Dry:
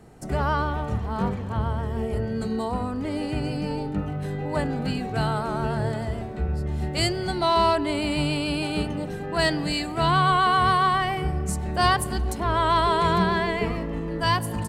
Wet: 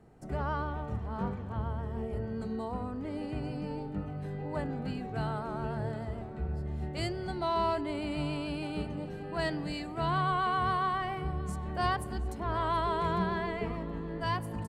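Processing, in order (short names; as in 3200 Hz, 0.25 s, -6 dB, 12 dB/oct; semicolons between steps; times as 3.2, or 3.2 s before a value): high shelf 3000 Hz -9.5 dB; on a send: echo 0.724 s -18 dB; on the sum: gain -8.5 dB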